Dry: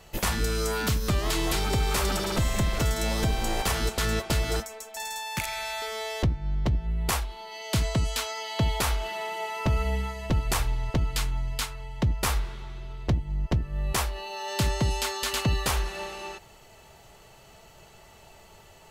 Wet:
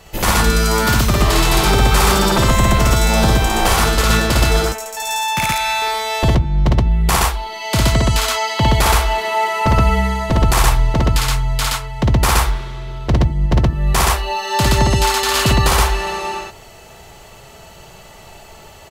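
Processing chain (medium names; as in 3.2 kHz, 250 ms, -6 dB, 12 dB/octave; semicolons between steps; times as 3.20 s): dynamic bell 980 Hz, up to +4 dB, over -43 dBFS, Q 1.1; on a send: loudspeakers at several distances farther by 19 m -1 dB, 42 m 0 dB; on the sum: trim +7.5 dB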